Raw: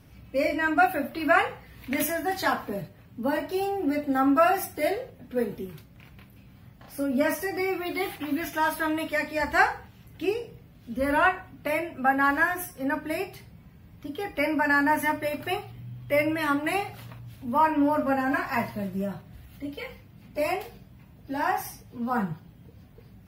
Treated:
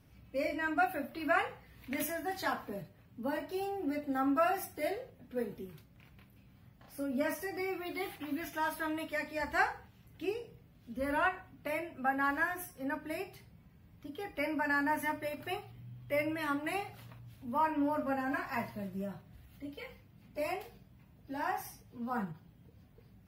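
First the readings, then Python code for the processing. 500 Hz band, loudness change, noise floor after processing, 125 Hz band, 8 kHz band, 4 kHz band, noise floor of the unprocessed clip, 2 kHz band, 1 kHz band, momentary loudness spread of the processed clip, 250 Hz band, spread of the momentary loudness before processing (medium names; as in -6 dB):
-9.0 dB, -9.0 dB, -61 dBFS, -9.0 dB, -9.0 dB, -9.0 dB, -52 dBFS, -9.0 dB, -9.0 dB, 16 LU, -9.0 dB, 17 LU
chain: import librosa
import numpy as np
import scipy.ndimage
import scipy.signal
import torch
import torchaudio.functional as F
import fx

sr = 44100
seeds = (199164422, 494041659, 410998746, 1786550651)

y = fx.end_taper(x, sr, db_per_s=290.0)
y = y * librosa.db_to_amplitude(-9.0)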